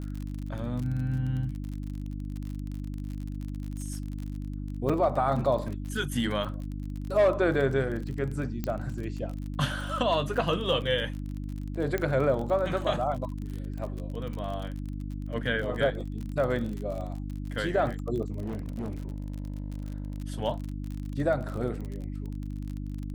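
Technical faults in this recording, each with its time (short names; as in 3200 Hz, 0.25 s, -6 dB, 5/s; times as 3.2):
crackle 37/s -34 dBFS
hum 50 Hz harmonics 6 -35 dBFS
4.89–4.9 gap 5.5 ms
8.64 pop -17 dBFS
11.98 pop -16 dBFS
18.42–20.2 clipped -29.5 dBFS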